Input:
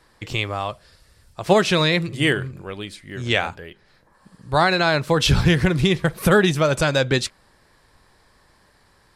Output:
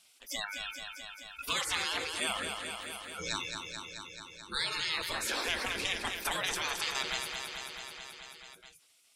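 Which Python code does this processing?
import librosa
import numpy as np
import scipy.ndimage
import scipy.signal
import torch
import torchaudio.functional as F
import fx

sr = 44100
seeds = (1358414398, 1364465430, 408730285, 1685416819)

y = fx.spec_gate(x, sr, threshold_db=-20, keep='weak')
y = fx.noise_reduce_blind(y, sr, reduce_db=28)
y = fx.rider(y, sr, range_db=4, speed_s=0.5)
y = fx.echo_feedback(y, sr, ms=217, feedback_pct=58, wet_db=-10)
y = fx.env_flatten(y, sr, amount_pct=50)
y = y * 10.0 ** (-4.5 / 20.0)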